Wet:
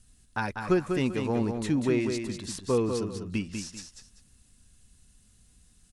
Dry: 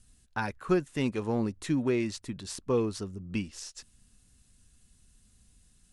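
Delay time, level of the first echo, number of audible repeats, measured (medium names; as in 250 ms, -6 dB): 195 ms, -6.0 dB, 2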